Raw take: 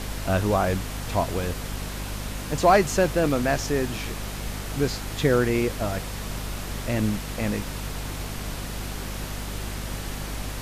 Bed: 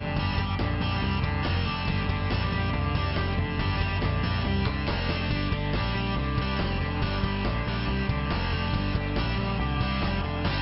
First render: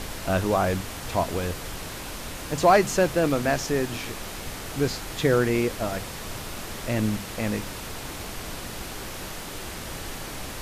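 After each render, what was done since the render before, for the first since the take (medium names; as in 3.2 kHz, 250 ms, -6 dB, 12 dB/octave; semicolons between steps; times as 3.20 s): hum notches 50/100/150/200/250 Hz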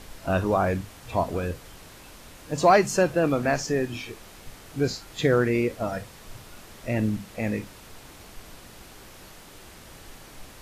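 noise print and reduce 11 dB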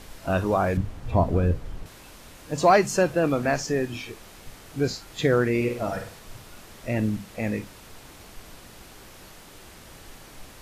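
0.77–1.86 s: tilt EQ -3 dB/octave; 5.56–6.19 s: flutter echo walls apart 8.5 m, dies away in 0.47 s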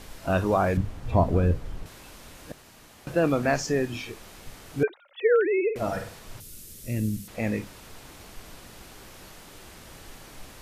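2.52–3.07 s: room tone; 4.83–5.76 s: formants replaced by sine waves; 6.40–7.28 s: FFT filter 120 Hz 0 dB, 480 Hz -7 dB, 780 Hz -22 dB, 6.6 kHz +4 dB, 11 kHz +10 dB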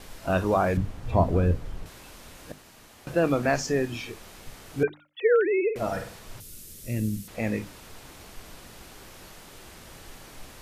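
gate with hold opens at -47 dBFS; hum notches 50/100/150/200/250/300 Hz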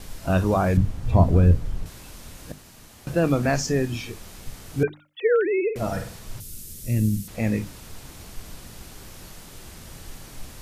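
tone controls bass +8 dB, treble +5 dB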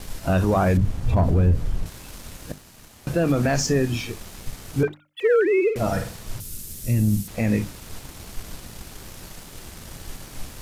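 waveshaping leveller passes 1; peak limiter -12 dBFS, peak gain reduction 6 dB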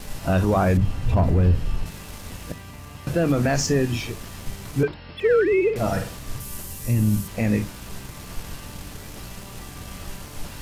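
add bed -14 dB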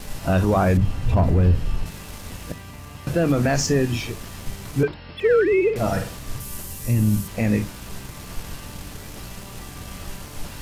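trim +1 dB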